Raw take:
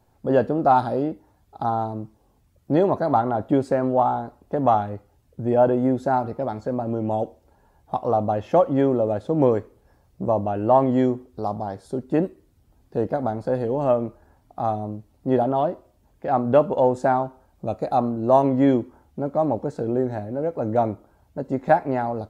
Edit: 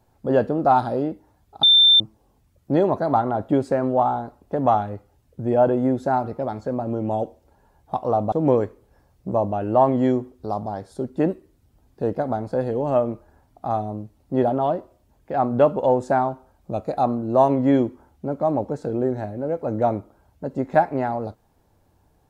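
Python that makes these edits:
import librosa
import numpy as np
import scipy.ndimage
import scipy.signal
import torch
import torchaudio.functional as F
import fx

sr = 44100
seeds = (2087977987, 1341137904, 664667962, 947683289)

y = fx.edit(x, sr, fx.bleep(start_s=1.63, length_s=0.37, hz=3570.0, db=-10.0),
    fx.cut(start_s=8.32, length_s=0.94), tone=tone)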